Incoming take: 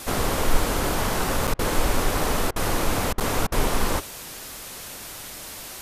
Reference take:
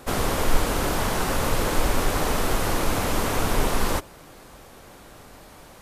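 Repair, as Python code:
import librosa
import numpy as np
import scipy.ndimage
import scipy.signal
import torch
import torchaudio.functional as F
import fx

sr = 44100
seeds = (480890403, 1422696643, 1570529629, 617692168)

y = fx.fix_interpolate(x, sr, at_s=(1.47, 3.2), length_ms=6.8)
y = fx.fix_interpolate(y, sr, at_s=(1.54, 2.51, 3.13, 3.47), length_ms=49.0)
y = fx.noise_reduce(y, sr, print_start_s=4.04, print_end_s=4.54, reduce_db=8.0)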